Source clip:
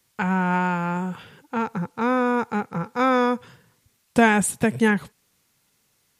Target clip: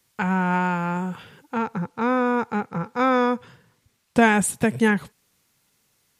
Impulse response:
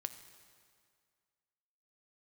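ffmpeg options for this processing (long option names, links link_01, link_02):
-filter_complex "[0:a]asettb=1/sr,asplit=3[link_01][link_02][link_03];[link_01]atrim=end=1.584[link_04];[link_02]atrim=start=1.58:end=4.22,asetpts=PTS-STARTPTS,afade=type=in:duration=0.004:curve=qsin,afade=type=out:start_time=2.636:duration=0.004:curve=qsin,highshelf=frequency=7000:gain=-7[link_05];[link_03]atrim=start=4.216[link_06];[link_04][link_05]acrossfade=duration=0.004:curve1=hsin:curve2=qsin[link_07];[link_07][link_06]acrossfade=duration=0.004:curve1=qsin:curve2=hsin"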